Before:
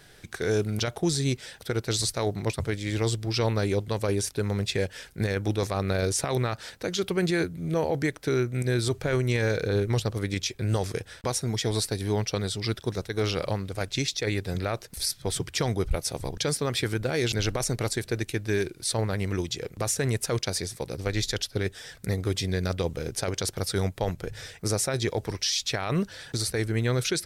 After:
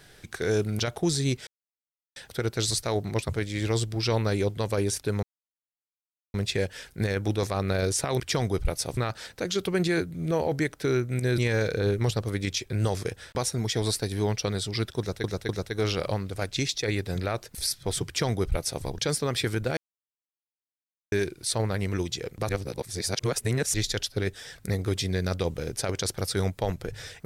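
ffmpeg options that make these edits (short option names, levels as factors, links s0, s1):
-filter_complex "[0:a]asplit=12[s0][s1][s2][s3][s4][s5][s6][s7][s8][s9][s10][s11];[s0]atrim=end=1.47,asetpts=PTS-STARTPTS,afade=t=out:st=1.466:d=0.004:c=hsin,apad=pad_dur=0.69[s12];[s1]atrim=start=1.47:end=4.54,asetpts=PTS-STARTPTS,afade=t=in:d=0.004:c=hsin,afade=t=out:st=3.066:d=0.004:c=hsin,apad=pad_dur=1.11[s13];[s2]atrim=start=4.54:end=6.402,asetpts=PTS-STARTPTS,afade=t=in:d=0.004:c=hsin[s14];[s3]atrim=start=15.458:end=16.232[s15];[s4]atrim=start=6.398:end=8.812[s16];[s5]atrim=start=9.268:end=13.132[s17];[s6]atrim=start=12.878:end=13.132[s18];[s7]atrim=start=12.878:end=17.16,asetpts=PTS-STARTPTS,afade=t=out:st=4.278:d=0.004:c=hsin[s19];[s8]atrim=start=17.16:end=18.51,asetpts=PTS-STARTPTS,volume=0[s20];[s9]atrim=start=18.51:end=19.882,asetpts=PTS-STARTPTS,afade=t=in:d=0.004:c=hsin[s21];[s10]atrim=start=19.878:end=21.132,asetpts=PTS-STARTPTS,areverse[s22];[s11]atrim=start=21.128[s23];[s12][s13][s14]concat=n=3:v=0:a=1[s24];[s24][s15]acrossfade=d=0.004:c1=hsin:c2=hsin[s25];[s25][s16]acrossfade=d=0.004:c1=hsin:c2=hsin[s26];[s26][s17]acrossfade=d=0.004:c1=hsin:c2=hsin[s27];[s27][s18]acrossfade=d=0.004:c1=hsin:c2=hsin[s28];[s19][s20][s21]concat=n=3:v=0:a=1[s29];[s28][s29]acrossfade=d=0.004:c1=hsin:c2=hsin[s30];[s30][s22]acrossfade=d=0.004:c1=hsin:c2=hsin[s31];[s31][s23]acrossfade=d=0.004:c1=hsin:c2=hsin"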